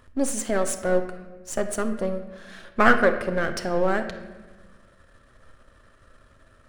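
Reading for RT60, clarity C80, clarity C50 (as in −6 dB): 1.2 s, 11.5 dB, 9.5 dB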